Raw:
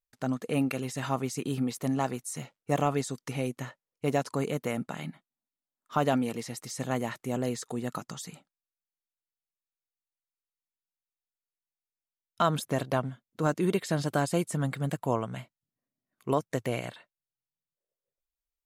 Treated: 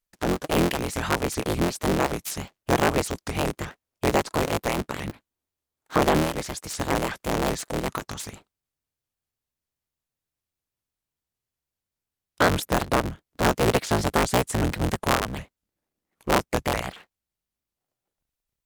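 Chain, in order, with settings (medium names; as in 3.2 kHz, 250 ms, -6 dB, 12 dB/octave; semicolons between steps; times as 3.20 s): cycle switcher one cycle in 3, inverted; vibrato with a chosen wave saw up 5.2 Hz, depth 250 cents; trim +5.5 dB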